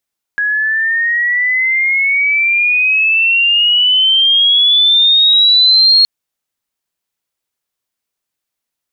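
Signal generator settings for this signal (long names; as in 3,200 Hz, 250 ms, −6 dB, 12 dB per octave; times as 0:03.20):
pitch glide with a swell sine, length 5.67 s, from 1,660 Hz, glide +16.5 semitones, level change +7 dB, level −5 dB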